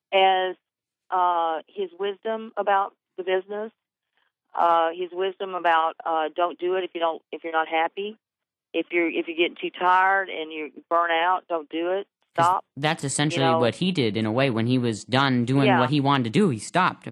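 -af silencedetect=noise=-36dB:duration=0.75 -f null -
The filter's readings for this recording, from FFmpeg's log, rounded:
silence_start: 3.68
silence_end: 4.55 | silence_duration: 0.87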